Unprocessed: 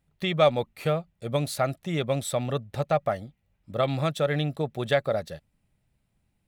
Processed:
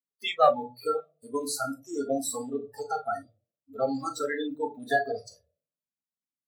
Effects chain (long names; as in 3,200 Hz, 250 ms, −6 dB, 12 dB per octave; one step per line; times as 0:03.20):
spectral magnitudes quantised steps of 30 dB
parametric band 2,200 Hz −7 dB 1.3 octaves
on a send at −3.5 dB: convolution reverb RT60 0.45 s, pre-delay 4 ms
on the sum: noise reduction from a noise print of the clip's start 26 dB
high-pass filter 420 Hz 12 dB per octave
level +3 dB